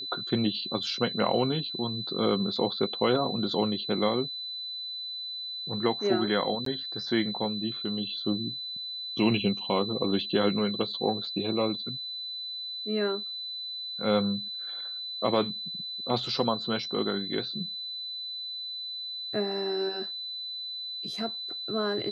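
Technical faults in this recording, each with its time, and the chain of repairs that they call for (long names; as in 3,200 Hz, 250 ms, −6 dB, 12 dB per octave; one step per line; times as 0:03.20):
whistle 4,000 Hz −34 dBFS
0:06.65–0:06.66: drop-out 13 ms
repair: notch filter 4,000 Hz, Q 30
repair the gap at 0:06.65, 13 ms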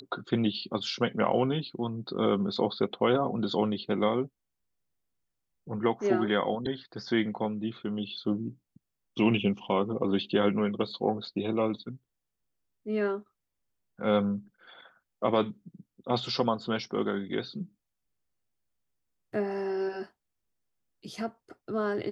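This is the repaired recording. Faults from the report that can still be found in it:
none of them is left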